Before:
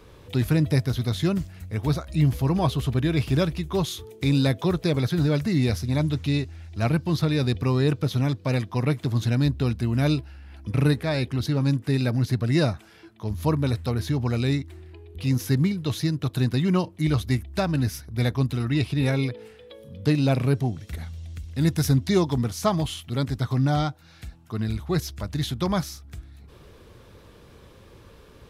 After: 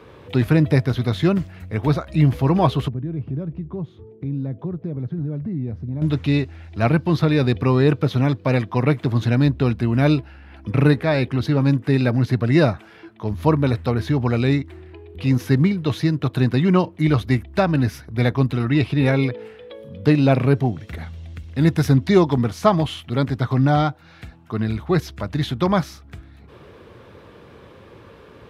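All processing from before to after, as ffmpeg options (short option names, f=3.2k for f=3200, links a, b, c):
-filter_complex "[0:a]asettb=1/sr,asplit=3[a][b][c];[a]atrim=end=2.884[d];[b]atrim=start=2.88:end=6.02,asetpts=PTS-STARTPTS,afade=t=in:d=0.004:c=qsin,afade=t=out:st=3.136:d=0.004:c=qsin,acompressor=threshold=-29dB:ratio=2.5:attack=3.2:release=140:knee=1:detection=peak,bandpass=f=140:t=q:w=0.81[e];[c]atrim=start=6.016[f];[d][e]acrossfade=d=0.004:c1=hsin:c2=qsin[g];[g][f]acrossfade=d=0.004:c1=qsin:c2=hsin,highpass=85,bass=f=250:g=-3,treble=f=4k:g=-14,volume=7.5dB"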